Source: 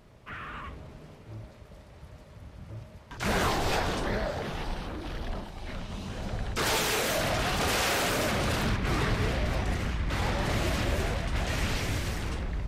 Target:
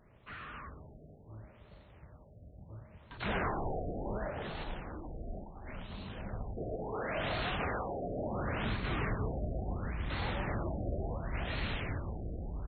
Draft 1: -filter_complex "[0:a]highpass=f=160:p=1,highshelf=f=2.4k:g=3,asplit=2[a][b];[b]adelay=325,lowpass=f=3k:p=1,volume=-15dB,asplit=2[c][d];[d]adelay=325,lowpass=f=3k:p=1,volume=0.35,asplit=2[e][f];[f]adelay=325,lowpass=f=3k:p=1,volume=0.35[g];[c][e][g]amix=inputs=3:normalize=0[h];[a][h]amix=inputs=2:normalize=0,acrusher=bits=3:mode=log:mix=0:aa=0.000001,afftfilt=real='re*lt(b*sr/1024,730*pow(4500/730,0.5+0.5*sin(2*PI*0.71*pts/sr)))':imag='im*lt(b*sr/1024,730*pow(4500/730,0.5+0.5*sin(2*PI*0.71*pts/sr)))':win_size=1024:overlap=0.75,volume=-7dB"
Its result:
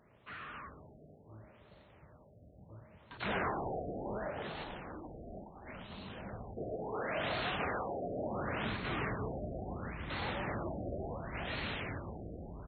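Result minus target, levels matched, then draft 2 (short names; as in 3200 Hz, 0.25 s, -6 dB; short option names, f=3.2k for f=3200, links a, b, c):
125 Hz band -3.5 dB
-filter_complex "[0:a]highshelf=f=2.4k:g=3,asplit=2[a][b];[b]adelay=325,lowpass=f=3k:p=1,volume=-15dB,asplit=2[c][d];[d]adelay=325,lowpass=f=3k:p=1,volume=0.35,asplit=2[e][f];[f]adelay=325,lowpass=f=3k:p=1,volume=0.35[g];[c][e][g]amix=inputs=3:normalize=0[h];[a][h]amix=inputs=2:normalize=0,acrusher=bits=3:mode=log:mix=0:aa=0.000001,afftfilt=real='re*lt(b*sr/1024,730*pow(4500/730,0.5+0.5*sin(2*PI*0.71*pts/sr)))':imag='im*lt(b*sr/1024,730*pow(4500/730,0.5+0.5*sin(2*PI*0.71*pts/sr)))':win_size=1024:overlap=0.75,volume=-7dB"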